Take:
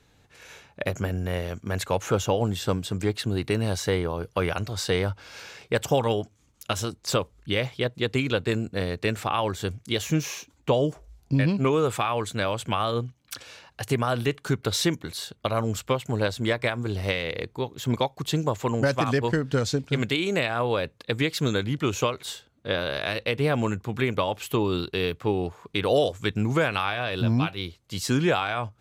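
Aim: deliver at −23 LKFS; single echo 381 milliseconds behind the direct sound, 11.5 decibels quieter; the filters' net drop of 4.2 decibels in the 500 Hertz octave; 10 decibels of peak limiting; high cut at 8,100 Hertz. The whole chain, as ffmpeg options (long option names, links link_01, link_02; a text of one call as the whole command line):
ffmpeg -i in.wav -af "lowpass=8100,equalizer=frequency=500:width_type=o:gain=-5,alimiter=limit=-21.5dB:level=0:latency=1,aecho=1:1:381:0.266,volume=10dB" out.wav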